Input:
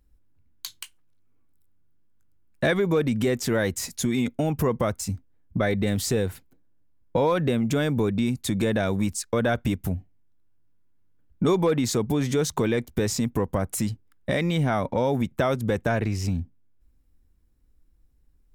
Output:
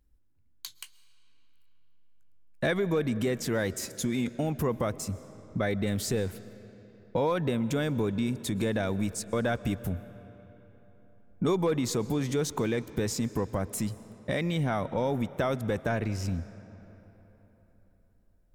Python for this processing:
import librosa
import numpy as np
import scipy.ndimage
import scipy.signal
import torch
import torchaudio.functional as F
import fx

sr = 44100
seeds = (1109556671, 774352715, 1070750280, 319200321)

y = fx.rev_freeverb(x, sr, rt60_s=4.0, hf_ratio=0.65, predelay_ms=90, drr_db=16.5)
y = F.gain(torch.from_numpy(y), -5.0).numpy()